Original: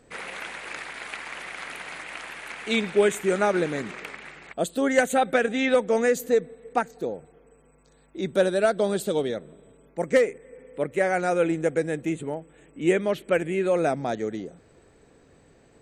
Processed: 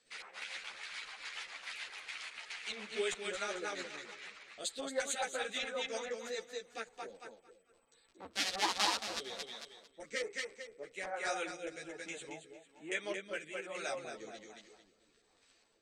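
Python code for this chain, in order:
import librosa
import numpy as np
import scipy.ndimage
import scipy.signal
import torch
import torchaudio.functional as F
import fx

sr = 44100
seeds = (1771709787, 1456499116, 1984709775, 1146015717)

p1 = fx.cycle_switch(x, sr, every=2, mode='inverted', at=(8.2, 9.19))
p2 = np.diff(p1, prepend=0.0)
p3 = fx.dmg_crackle(p2, sr, seeds[0], per_s=18.0, level_db=-49.0)
p4 = fx.filter_lfo_lowpass(p3, sr, shape='square', hz=2.4, low_hz=970.0, high_hz=4700.0, q=1.4)
p5 = p4 + fx.echo_feedback(p4, sr, ms=224, feedback_pct=33, wet_db=-5, dry=0)
p6 = fx.rotary_switch(p5, sr, hz=7.0, then_hz=1.2, switch_at_s=6.43)
p7 = fx.low_shelf(p6, sr, hz=82.0, db=7.0)
p8 = fx.ensemble(p7, sr)
y = p8 * librosa.db_to_amplitude(7.5)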